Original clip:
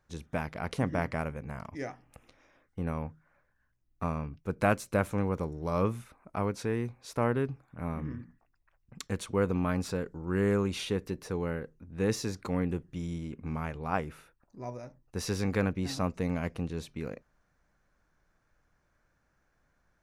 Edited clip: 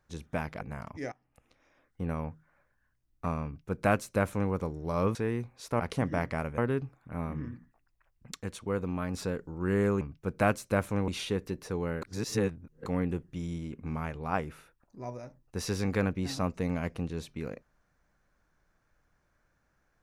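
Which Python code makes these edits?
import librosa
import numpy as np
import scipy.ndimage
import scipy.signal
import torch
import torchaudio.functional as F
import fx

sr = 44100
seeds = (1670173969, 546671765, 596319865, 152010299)

y = fx.edit(x, sr, fx.move(start_s=0.61, length_s=0.78, to_s=7.25),
    fx.fade_in_from(start_s=1.9, length_s=0.9, floor_db=-20.0),
    fx.duplicate(start_s=4.23, length_s=1.07, to_s=10.68),
    fx.cut(start_s=5.93, length_s=0.67),
    fx.clip_gain(start_s=9.03, length_s=0.78, db=-4.0),
    fx.reverse_span(start_s=11.62, length_s=0.84), tone=tone)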